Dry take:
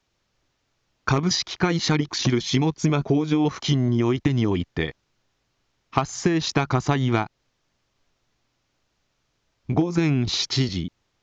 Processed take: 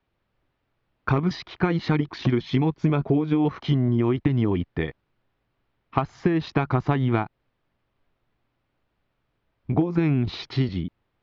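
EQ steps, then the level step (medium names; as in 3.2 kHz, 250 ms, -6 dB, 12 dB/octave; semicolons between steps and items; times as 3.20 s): distance through air 380 m; 0.0 dB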